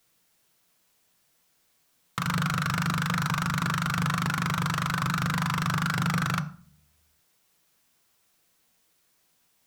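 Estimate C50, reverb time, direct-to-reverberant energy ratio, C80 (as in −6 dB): 15.0 dB, 0.45 s, 9.0 dB, 19.5 dB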